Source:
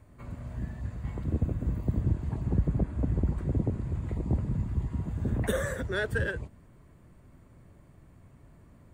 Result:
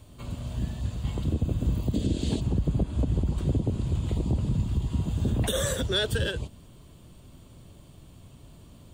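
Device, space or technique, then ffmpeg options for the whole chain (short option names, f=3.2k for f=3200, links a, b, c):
over-bright horn tweeter: -filter_complex "[0:a]asplit=3[a][b][c];[a]afade=t=out:st=1.93:d=0.02[d];[b]equalizer=f=125:t=o:w=1:g=-5,equalizer=f=250:t=o:w=1:g=9,equalizer=f=500:t=o:w=1:g=9,equalizer=f=1k:t=o:w=1:g=-7,equalizer=f=2k:t=o:w=1:g=5,equalizer=f=4k:t=o:w=1:g=11,equalizer=f=8k:t=o:w=1:g=9,afade=t=in:st=1.93:d=0.02,afade=t=out:st=2.39:d=0.02[e];[c]afade=t=in:st=2.39:d=0.02[f];[d][e][f]amix=inputs=3:normalize=0,highshelf=f=2.5k:t=q:w=3:g=8,alimiter=limit=-21.5dB:level=0:latency=1:release=125,volume=5dB"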